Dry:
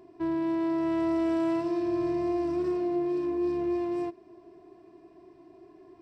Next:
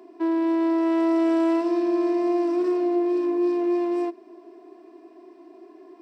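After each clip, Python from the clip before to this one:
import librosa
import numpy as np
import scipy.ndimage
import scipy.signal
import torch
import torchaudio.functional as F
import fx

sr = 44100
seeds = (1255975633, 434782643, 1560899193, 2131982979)

y = scipy.signal.sosfilt(scipy.signal.cheby1(6, 1.0, 230.0, 'highpass', fs=sr, output='sos'), x)
y = F.gain(torch.from_numpy(y), 6.0).numpy()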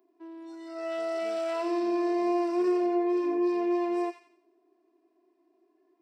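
y = fx.noise_reduce_blind(x, sr, reduce_db=21)
y = fx.echo_wet_highpass(y, sr, ms=88, feedback_pct=36, hz=1700.0, wet_db=-6.0)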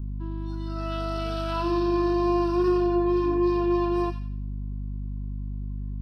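y = fx.add_hum(x, sr, base_hz=50, snr_db=10)
y = fx.fixed_phaser(y, sr, hz=2100.0, stages=6)
y = F.gain(torch.from_numpy(y), 8.5).numpy()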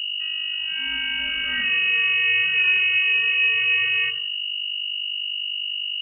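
y = fx.freq_invert(x, sr, carrier_hz=2900)
y = F.gain(torch.from_numpy(y), 2.5).numpy()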